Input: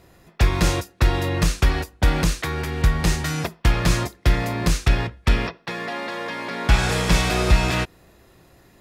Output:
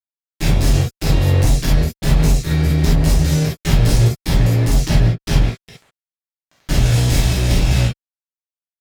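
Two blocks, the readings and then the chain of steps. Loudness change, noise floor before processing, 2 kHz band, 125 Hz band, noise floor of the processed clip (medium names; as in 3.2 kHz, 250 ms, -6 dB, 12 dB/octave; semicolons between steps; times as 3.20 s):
+5.5 dB, -55 dBFS, -3.0 dB, +8.0 dB, under -85 dBFS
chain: peaking EQ 580 Hz -4.5 dB 1.3 oct; Chebyshev shaper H 3 -7 dB, 8 -40 dB, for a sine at -3.5 dBFS; amplifier tone stack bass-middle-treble 10-0-1; fuzz box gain 48 dB, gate -53 dBFS; gated-style reverb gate 90 ms flat, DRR -7 dB; trim -4 dB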